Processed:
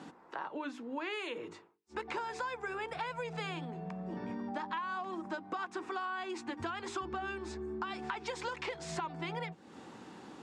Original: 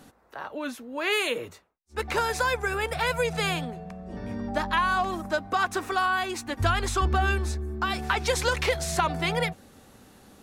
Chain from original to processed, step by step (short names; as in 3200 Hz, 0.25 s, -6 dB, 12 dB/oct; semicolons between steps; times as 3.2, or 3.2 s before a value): speaker cabinet 170–6900 Hz, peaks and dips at 170 Hz +5 dB, 330 Hz +8 dB, 610 Hz -4 dB, 940 Hz +7 dB, 4100 Hz -4 dB, 6000 Hz -6 dB; notches 50/100/150/200/250/300/350/400/450 Hz; compressor 5:1, threshold -40 dBFS, peak gain reduction 20 dB; gain +2 dB